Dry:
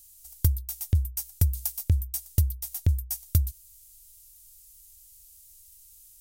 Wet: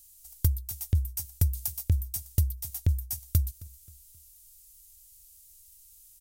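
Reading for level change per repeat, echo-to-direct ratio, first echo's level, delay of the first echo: -8.0 dB, -21.0 dB, -21.5 dB, 266 ms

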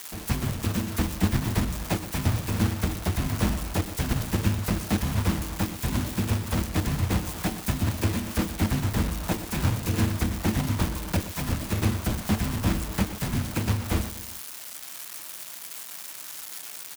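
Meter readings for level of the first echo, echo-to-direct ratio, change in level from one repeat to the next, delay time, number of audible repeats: -14.0 dB, -12.5 dB, -5.5 dB, 122 ms, 3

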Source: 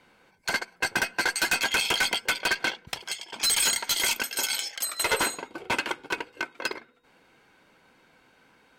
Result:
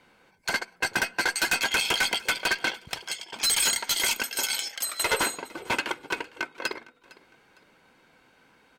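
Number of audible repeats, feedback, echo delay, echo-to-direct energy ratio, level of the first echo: 2, 33%, 457 ms, -21.5 dB, -22.0 dB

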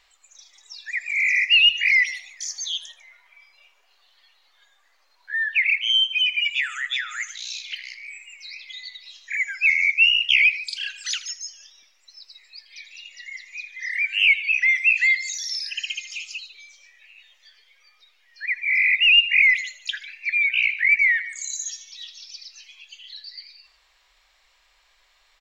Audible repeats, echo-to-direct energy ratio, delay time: 3, -14.0 dB, 80 ms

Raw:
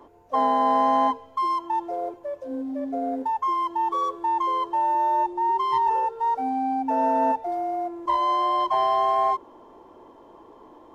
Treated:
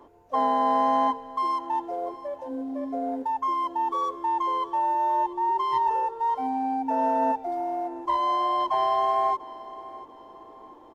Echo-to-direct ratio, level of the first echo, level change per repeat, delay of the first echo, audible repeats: -17.5 dB, -18.0 dB, -8.0 dB, 691 ms, 3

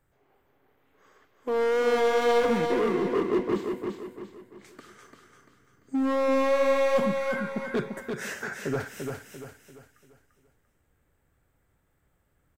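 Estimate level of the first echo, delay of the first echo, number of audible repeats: -5.0 dB, 343 ms, 4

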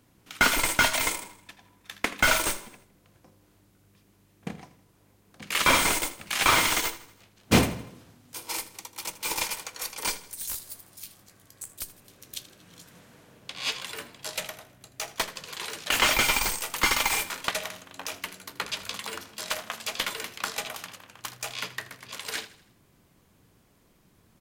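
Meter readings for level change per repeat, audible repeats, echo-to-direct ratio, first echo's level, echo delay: -6.5 dB, 3, -16.0 dB, -17.0 dB, 80 ms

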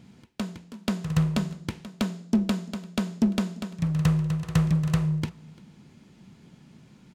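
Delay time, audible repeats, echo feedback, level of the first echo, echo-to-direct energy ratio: 344 ms, 1, no regular repeats, -23.5 dB, -23.5 dB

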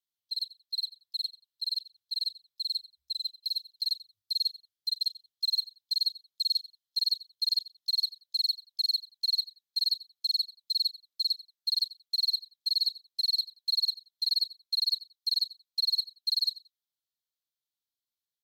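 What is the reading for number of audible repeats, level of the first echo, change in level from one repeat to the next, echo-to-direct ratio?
2, -18.0 dB, -14.5 dB, -18.0 dB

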